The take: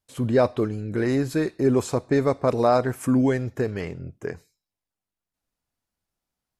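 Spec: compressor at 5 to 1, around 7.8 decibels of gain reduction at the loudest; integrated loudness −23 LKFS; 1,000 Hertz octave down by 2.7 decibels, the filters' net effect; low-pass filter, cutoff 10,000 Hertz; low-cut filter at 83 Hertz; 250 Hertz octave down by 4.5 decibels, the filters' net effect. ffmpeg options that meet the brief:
ffmpeg -i in.wav -af "highpass=83,lowpass=10000,equalizer=frequency=250:width_type=o:gain=-5,equalizer=frequency=1000:width_type=o:gain=-3.5,acompressor=threshold=-25dB:ratio=5,volume=8dB" out.wav

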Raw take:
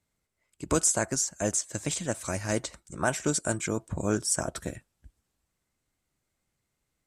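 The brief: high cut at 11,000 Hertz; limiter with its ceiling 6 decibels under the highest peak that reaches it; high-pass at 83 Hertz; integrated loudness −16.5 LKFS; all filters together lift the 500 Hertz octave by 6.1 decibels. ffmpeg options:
ffmpeg -i in.wav -af "highpass=83,lowpass=11000,equalizer=frequency=500:width_type=o:gain=7.5,volume=12.5dB,alimiter=limit=-1.5dB:level=0:latency=1" out.wav

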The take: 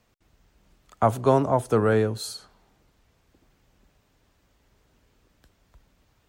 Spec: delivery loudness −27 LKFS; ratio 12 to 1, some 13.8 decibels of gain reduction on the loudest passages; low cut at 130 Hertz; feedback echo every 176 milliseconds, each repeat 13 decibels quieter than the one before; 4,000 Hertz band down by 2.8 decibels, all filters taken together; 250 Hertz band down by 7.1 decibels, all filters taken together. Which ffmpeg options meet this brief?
ffmpeg -i in.wav -af "highpass=130,equalizer=frequency=250:width_type=o:gain=-8.5,equalizer=frequency=4000:width_type=o:gain=-3,acompressor=threshold=-30dB:ratio=12,aecho=1:1:176|352|528:0.224|0.0493|0.0108,volume=9dB" out.wav

